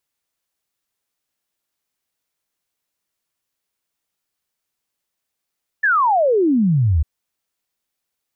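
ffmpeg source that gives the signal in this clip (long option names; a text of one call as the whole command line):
ffmpeg -f lavfi -i "aevalsrc='0.237*clip(min(t,1.2-t)/0.01,0,1)*sin(2*PI*1800*1.2/log(70/1800)*(exp(log(70/1800)*t/1.2)-1))':duration=1.2:sample_rate=44100" out.wav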